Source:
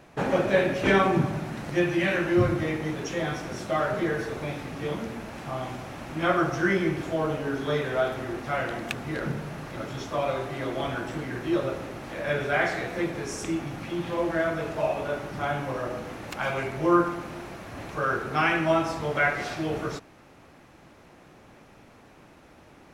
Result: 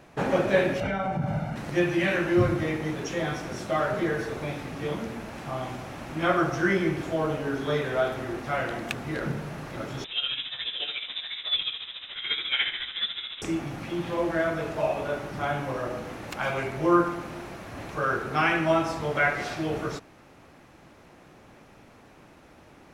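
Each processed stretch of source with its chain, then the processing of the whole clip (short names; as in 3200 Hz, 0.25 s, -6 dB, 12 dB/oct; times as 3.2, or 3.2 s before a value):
0.8–1.56 compressor 10:1, threshold -24 dBFS + high shelf 2800 Hz -11 dB + comb 1.4 ms, depth 83%
10.04–13.42 inverted band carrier 3800 Hz + tremolo 14 Hz, depth 61%
whole clip: dry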